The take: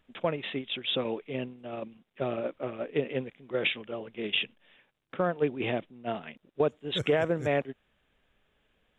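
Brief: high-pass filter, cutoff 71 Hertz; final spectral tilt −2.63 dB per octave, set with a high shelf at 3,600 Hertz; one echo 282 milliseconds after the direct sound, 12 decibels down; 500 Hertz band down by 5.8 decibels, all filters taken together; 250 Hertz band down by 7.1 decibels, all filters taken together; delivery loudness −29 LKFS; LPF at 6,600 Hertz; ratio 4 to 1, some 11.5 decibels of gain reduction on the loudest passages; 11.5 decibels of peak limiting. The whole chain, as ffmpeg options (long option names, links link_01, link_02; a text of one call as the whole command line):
ffmpeg -i in.wav -af "highpass=71,lowpass=6600,equalizer=frequency=250:width_type=o:gain=-8,equalizer=frequency=500:width_type=o:gain=-5,highshelf=frequency=3600:gain=4.5,acompressor=threshold=-37dB:ratio=4,alimiter=level_in=9dB:limit=-24dB:level=0:latency=1,volume=-9dB,aecho=1:1:282:0.251,volume=16dB" out.wav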